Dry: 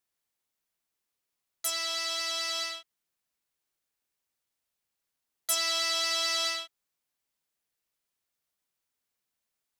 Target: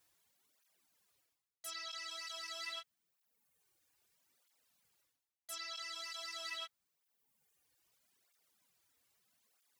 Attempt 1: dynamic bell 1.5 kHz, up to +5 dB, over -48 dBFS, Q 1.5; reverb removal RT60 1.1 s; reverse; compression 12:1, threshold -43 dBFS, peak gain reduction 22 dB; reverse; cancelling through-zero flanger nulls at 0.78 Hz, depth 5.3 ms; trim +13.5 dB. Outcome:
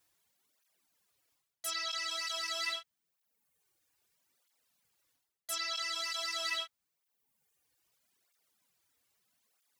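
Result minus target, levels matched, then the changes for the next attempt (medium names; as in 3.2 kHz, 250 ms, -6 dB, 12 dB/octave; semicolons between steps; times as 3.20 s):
compression: peak gain reduction -8.5 dB
change: compression 12:1, threshold -52.5 dBFS, peak gain reduction 30.5 dB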